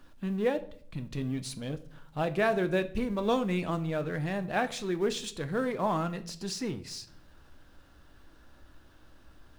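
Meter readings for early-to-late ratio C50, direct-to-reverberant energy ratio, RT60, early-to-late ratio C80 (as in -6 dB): 16.5 dB, 10.0 dB, 0.55 s, 20.5 dB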